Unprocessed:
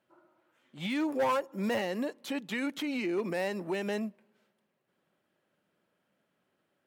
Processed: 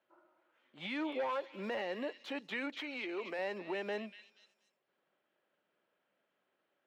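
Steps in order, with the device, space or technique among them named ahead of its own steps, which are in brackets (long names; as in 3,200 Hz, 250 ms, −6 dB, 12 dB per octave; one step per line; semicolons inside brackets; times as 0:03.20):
DJ mixer with the lows and highs turned down (three-way crossover with the lows and the highs turned down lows −13 dB, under 320 Hz, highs −19 dB, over 4,500 Hz; brickwall limiter −26.5 dBFS, peak gain reduction 6.5 dB)
0:02.75–0:03.39: high-pass filter 420 Hz 6 dB per octave
echo through a band-pass that steps 240 ms, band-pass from 3,000 Hz, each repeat 0.7 octaves, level −6.5 dB
level −2.5 dB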